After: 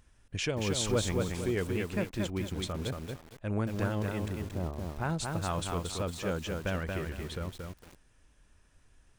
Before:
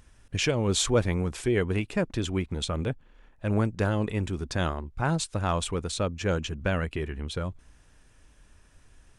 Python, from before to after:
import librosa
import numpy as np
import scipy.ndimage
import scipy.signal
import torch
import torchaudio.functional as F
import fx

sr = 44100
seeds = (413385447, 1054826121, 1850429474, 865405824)

y = fx.bessel_lowpass(x, sr, hz=690.0, order=6, at=(4.28, 4.81))
y = fx.echo_crushed(y, sr, ms=229, feedback_pct=35, bits=7, wet_db=-3.0)
y = F.gain(torch.from_numpy(y), -6.5).numpy()